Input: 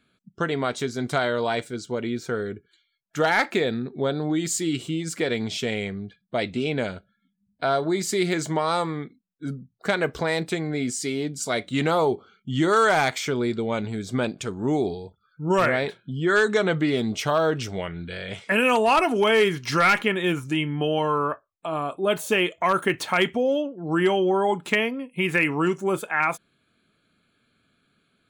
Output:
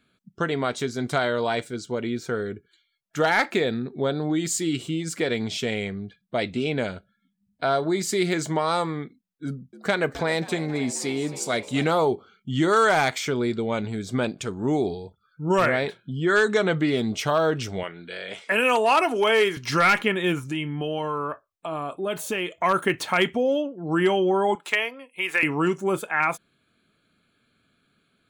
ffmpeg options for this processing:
-filter_complex "[0:a]asettb=1/sr,asplit=3[s0][s1][s2];[s0]atrim=end=9.464[s3];[s1]atrim=start=9.46:end=11.93,asetpts=PTS-STARTPTS,afade=t=in:d=0.004:c=qsin,afade=t=out:st=2.466:d=0.004:c=qsin,asplit=8[s4][s5][s6][s7][s8][s9][s10][s11];[s5]adelay=267,afreqshift=77,volume=0.158[s12];[s6]adelay=534,afreqshift=154,volume=0.101[s13];[s7]adelay=801,afreqshift=231,volume=0.0646[s14];[s8]adelay=1068,afreqshift=308,volume=0.0417[s15];[s9]adelay=1335,afreqshift=385,volume=0.0266[s16];[s10]adelay=1602,afreqshift=462,volume=0.017[s17];[s11]adelay=1869,afreqshift=539,volume=0.0108[s18];[s4][s12][s13][s14][s15][s16][s17][s18]amix=inputs=8:normalize=0,atrim=end_sample=108927[s19];[s2]atrim=start=11.926[s20];[s3][s19]acrossfade=d=0.004:c1=hsin:c2=qsin[s21];[s21][s20]acrossfade=d=0.004:c1=qsin:c2=hsin,asettb=1/sr,asplit=3[s22][s23][s24];[s22]atrim=end=17.834[s25];[s23]atrim=start=17.83:end=19.57,asetpts=PTS-STARTPTS,afade=t=in:d=0.004:c=qsin,afade=t=out:st=1.736:d=0.004:c=qsin,highpass=300[s26];[s24]atrim=start=19.566[s27];[s25][s26]acrossfade=d=0.004:c1=hsin:c2=qsin[s28];[s28][s27]acrossfade=d=0.004:c1=qsin:c2=hsin,asettb=1/sr,asplit=3[s29][s30][s31];[s29]atrim=end=20.474[s32];[s30]atrim=start=20.47:end=22.59,asetpts=PTS-STARTPTS,afade=t=in:d=0.004:c=qsin,afade=t=out:st=2.116:d=0.004:c=qsin,acompressor=threshold=0.0447:ratio=2:attack=3.2:release=140:knee=1:detection=peak[s33];[s31]atrim=start=22.586[s34];[s32][s33]acrossfade=d=0.004:c1=hsin:c2=qsin[s35];[s35][s34]acrossfade=d=0.004:c1=qsin:c2=hsin,asettb=1/sr,asplit=3[s36][s37][s38];[s36]atrim=end=24.554[s39];[s37]atrim=start=24.55:end=25.43,asetpts=PTS-STARTPTS,afade=t=in:d=0.004:c=qsin,afade=t=out:st=0.876:d=0.004:c=qsin,highpass=620[s40];[s38]atrim=start=25.426[s41];[s39][s40]acrossfade=d=0.004:c1=hsin:c2=qsin[s42];[s42][s41]acrossfade=d=0.004:c1=qsin:c2=hsin"

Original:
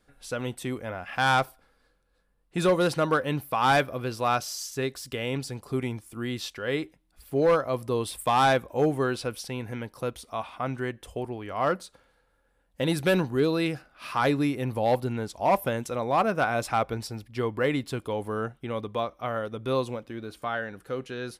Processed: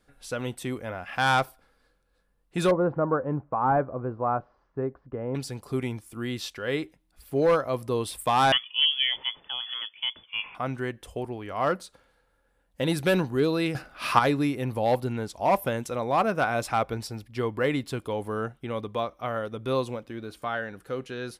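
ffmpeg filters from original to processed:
-filter_complex "[0:a]asettb=1/sr,asplit=3[s0][s1][s2];[s0]atrim=end=2.714[s3];[s1]atrim=start=2.71:end=5.35,asetpts=PTS-STARTPTS,afade=t=in:d=0.004:c=qsin,afade=t=out:st=2.636:d=0.004:c=qsin,lowpass=f=1200:w=0.5412,lowpass=f=1200:w=1.3066[s4];[s2]atrim=start=5.346[s5];[s3][s4]acrossfade=d=0.004:c1=hsin:c2=qsin[s6];[s6][s5]acrossfade=d=0.004:c1=qsin:c2=hsin,asettb=1/sr,asplit=3[s7][s8][s9];[s7]atrim=end=8.524[s10];[s8]atrim=start=8.52:end=10.55,asetpts=PTS-STARTPTS,afade=t=in:d=0.004:c=qsin,afade=t=out:st=2.026:d=0.004:c=qsin,lowpass=f=3000:t=q:w=0.5098,lowpass=f=3000:t=q:w=0.6013,lowpass=f=3000:t=q:w=0.9,lowpass=f=3000:t=q:w=2.563,afreqshift=-3500[s11];[s9]atrim=start=10.546[s12];[s10][s11]acrossfade=d=0.004:c1=hsin:c2=qsin[s13];[s13][s12]acrossfade=d=0.004:c1=qsin:c2=hsin,asplit=3[s14][s15][s16];[s14]atrim=end=13.752[s17];[s15]atrim=start=13.748:end=14.192,asetpts=PTS-STARTPTS,volume=2.82[s18];[s16]atrim=start=14.188[s19];[s17][s18]acrossfade=d=0.004:c1=hsin:c2=hsin[s20];[s20][s19]acrossfade=d=0.004:c1=hsin:c2=hsin"

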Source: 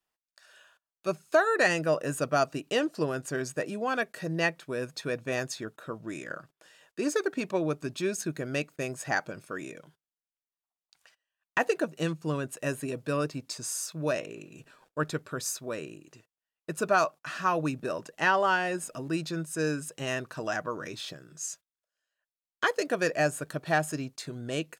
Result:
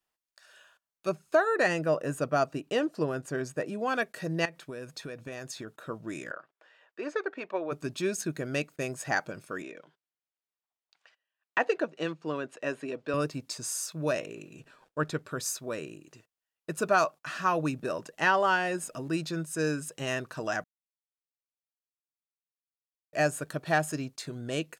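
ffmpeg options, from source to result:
-filter_complex "[0:a]asettb=1/sr,asplit=3[s0][s1][s2];[s0]atrim=end=1.094[s3];[s1]atrim=start=1.09:end=3.79,asetpts=PTS-STARTPTS,afade=t=in:d=0.004:c=qsin,afade=t=out:st=2.696:d=0.004:c=qsin,highshelf=f=2100:g=-6.5[s4];[s2]atrim=start=3.786[s5];[s3][s4]acrossfade=d=0.004:c1=hsin:c2=qsin[s6];[s6][s5]acrossfade=d=0.004:c1=qsin:c2=hsin,asettb=1/sr,asplit=3[s7][s8][s9];[s7]atrim=end=4.454[s10];[s8]atrim=start=4.45:end=5.79,asetpts=PTS-STARTPTS,afade=t=in:d=0.004:c=qsin,afade=t=out:st=1.336:d=0.004:c=qsin,acompressor=threshold=0.0178:ratio=10:attack=3.2:release=140:knee=1:detection=peak[s11];[s9]atrim=start=5.786[s12];[s10][s11]acrossfade=d=0.004:c1=hsin:c2=qsin[s13];[s13][s12]acrossfade=d=0.004:c1=qsin:c2=hsin,asplit=3[s14][s15][s16];[s14]afade=t=out:st=6.3:d=0.02[s17];[s15]highpass=480,lowpass=2400,afade=t=in:st=6.3:d=0.02,afade=t=out:st=7.71:d=0.02[s18];[s16]afade=t=in:st=7.71:d=0.02[s19];[s17][s18][s19]amix=inputs=3:normalize=0,asettb=1/sr,asplit=3[s20][s21][s22];[s20]atrim=end=9.624[s23];[s21]atrim=start=9.62:end=13.14,asetpts=PTS-STARTPTS,afade=t=in:d=0.004:c=qsin,afade=t=out:st=3.516:d=0.004:c=qsin,highpass=270,lowpass=4000[s24];[s22]atrim=start=13.136[s25];[s23][s24]acrossfade=d=0.004:c1=hsin:c2=qsin[s26];[s26][s25]acrossfade=d=0.004:c1=qsin:c2=hsin,asettb=1/sr,asplit=3[s27][s28][s29];[s27]atrim=end=14.554[s30];[s28]atrim=start=14.55:end=15.26,asetpts=PTS-STARTPTS,afade=t=in:d=0.004:c=qsin,afade=t=out:st=0.706:d=0.004:c=qsin,highshelf=f=7700:g=-7[s31];[s29]atrim=start=15.256[s32];[s30][s31]acrossfade=d=0.004:c1=hsin:c2=qsin[s33];[s33][s32]acrossfade=d=0.004:c1=qsin:c2=hsin,asplit=3[s34][s35][s36];[s34]atrim=end=20.64,asetpts=PTS-STARTPTS,afade=t=out:st=20.636:d=0.004:c=hsin[s37];[s35]atrim=start=20.64:end=23.13,asetpts=PTS-STARTPTS,volume=0[s38];[s36]atrim=start=23.13,asetpts=PTS-STARTPTS,afade=t=in:d=0.004:c=hsin[s39];[s37][s38][s39]concat=n=3:v=0:a=1"

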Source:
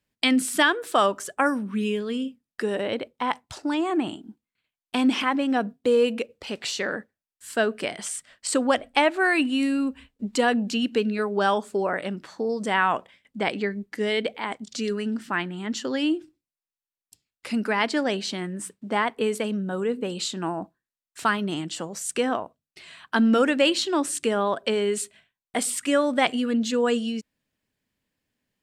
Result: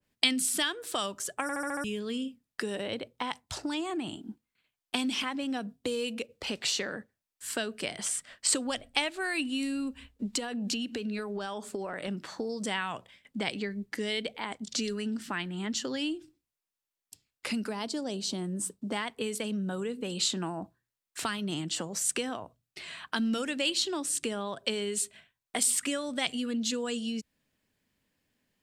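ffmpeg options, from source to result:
-filter_complex "[0:a]asettb=1/sr,asplit=3[s0][s1][s2];[s0]atrim=end=10.264[s3];[s1]atrim=start=10.26:end=12.08,asetpts=PTS-STARTPTS,afade=t=in:d=0.004:c=qsin,afade=t=out:st=1.816:d=0.004:c=qsin,acompressor=threshold=0.0447:ratio=6:attack=3.2:release=140:knee=1:detection=peak[s4];[s2]atrim=start=12.076[s5];[s3][s4]acrossfade=d=0.004:c1=hsin:c2=qsin[s6];[s6][s5]acrossfade=d=0.004:c1=qsin:c2=hsin,asettb=1/sr,asplit=3[s7][s8][s9];[s7]atrim=end=17.694[s10];[s8]atrim=start=17.69:end=18.92,asetpts=PTS-STARTPTS,afade=t=in:d=0.004:c=qsin,afade=t=out:st=1.226:d=0.004:c=qsin,equalizer=f=2000:t=o:w=1.4:g=-13.5[s11];[s9]atrim=start=18.916[s12];[s10][s11]acrossfade=d=0.004:c1=hsin:c2=qsin[s13];[s13][s12]acrossfade=d=0.004:c1=qsin:c2=hsin,asplit=7[s14][s15][s16][s17][s18][s19][s20];[s14]atrim=end=1.492[s21];[s15]atrim=start=1.418:end=1.492[s22];[s16]atrim=start=1.418:end=1.492[s23];[s17]atrim=start=1.418:end=1.492[s24];[s18]atrim=start=1.418:end=1.492[s25];[s19]atrim=start=1.418:end=1.492[s26];[s20]atrim=start=1.838[s27];[s21][s22]acrossfade=d=0.004:c1=hsin:c2=hsin[s28];[s28][s23]acrossfade=d=0.004:c1=hsin:c2=hsin[s29];[s29][s24]acrossfade=d=0.004:c1=hsin:c2=hsin[s30];[s30][s25]acrossfade=d=0.004:c1=hsin:c2=hsin[s31];[s31][s26]acrossfade=d=0.004:c1=hsin:c2=hsin[s32];[s32][s27]acrossfade=d=0.004:c1=hsin:c2=hsin,bandreject=f=60:t=h:w=6,bandreject=f=120:t=h:w=6,acrossover=split=130|3000[s33][s34][s35];[s34]acompressor=threshold=0.0141:ratio=5[s36];[s33][s36][s35]amix=inputs=3:normalize=0,adynamicequalizer=threshold=0.00562:dfrequency=1600:dqfactor=0.7:tfrequency=1600:tqfactor=0.7:attack=5:release=100:ratio=0.375:range=2.5:mode=cutabove:tftype=highshelf,volume=1.41"

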